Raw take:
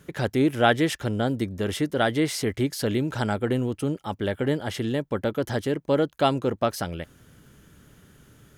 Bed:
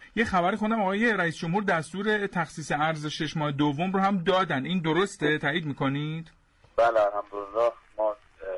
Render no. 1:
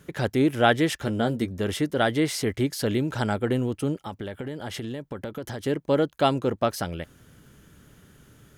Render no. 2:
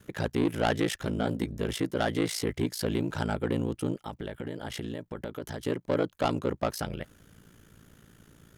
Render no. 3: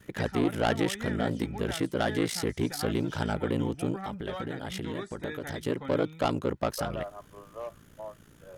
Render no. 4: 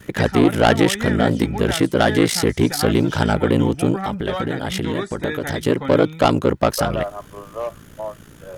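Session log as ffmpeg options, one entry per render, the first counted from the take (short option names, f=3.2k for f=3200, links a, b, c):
-filter_complex "[0:a]asettb=1/sr,asplit=3[a][b][c];[a]atrim=end=1.004[d];[b]atrim=start=1:end=1.51,asetpts=PTS-STARTPTS,afade=t=in:d=0.004:c=qsin,afade=t=out:st=0.506:d=0.004:c=qsin,asplit=2[e][f];[f]adelay=13,volume=-7.5dB[g];[e][g]amix=inputs=2:normalize=0,atrim=end_sample=22491[h];[c]atrim=start=1.506[i];[d][h]acrossfade=d=0.004:c1=hsin:c2=qsin[j];[j][i]acrossfade=d=0.004:c1=qsin:c2=hsin,asettb=1/sr,asplit=3[k][l][m];[k]atrim=end=3.974[n];[l]atrim=start=3.97:end=5.66,asetpts=PTS-STARTPTS,afade=t=in:d=0.004:c=qsin,afade=t=out:st=1.686:d=0.004:c=qsin,acompressor=threshold=-29dB:ratio=12:attack=3.2:release=140:knee=1:detection=peak[o];[m]atrim=start=5.656[p];[n][o]acrossfade=d=0.004:c1=hsin:c2=qsin[q];[q][p]acrossfade=d=0.004:c1=qsin:c2=hsin"
-af "asoftclip=type=tanh:threshold=-17.5dB,aeval=exprs='val(0)*sin(2*PI*28*n/s)':c=same"
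-filter_complex "[1:a]volume=-15dB[a];[0:a][a]amix=inputs=2:normalize=0"
-af "volume=12dB"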